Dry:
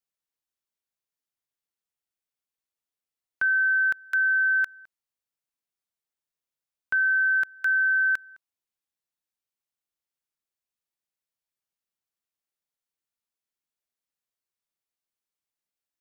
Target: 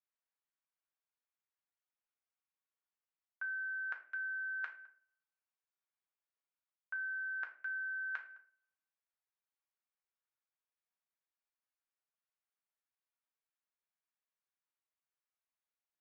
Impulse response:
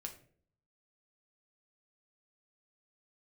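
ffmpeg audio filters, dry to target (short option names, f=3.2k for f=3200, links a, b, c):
-filter_complex "[0:a]areverse,acompressor=threshold=-35dB:ratio=6,areverse,highpass=760,lowpass=2k[a];[1:a]atrim=start_sample=2205[b];[a][b]afir=irnorm=-1:irlink=0,volume=3dB"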